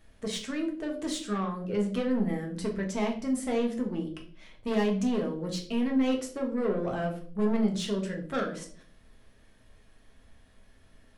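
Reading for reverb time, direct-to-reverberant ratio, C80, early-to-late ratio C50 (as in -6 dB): 0.50 s, 0.5 dB, 14.0 dB, 9.5 dB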